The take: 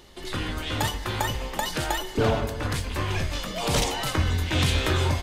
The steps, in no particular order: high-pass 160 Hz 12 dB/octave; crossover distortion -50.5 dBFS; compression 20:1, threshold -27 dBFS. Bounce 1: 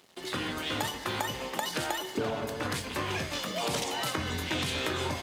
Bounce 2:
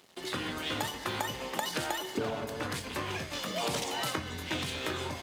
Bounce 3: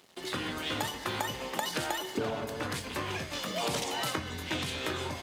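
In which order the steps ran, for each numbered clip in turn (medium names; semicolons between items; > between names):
crossover distortion > high-pass > compression; compression > crossover distortion > high-pass; crossover distortion > compression > high-pass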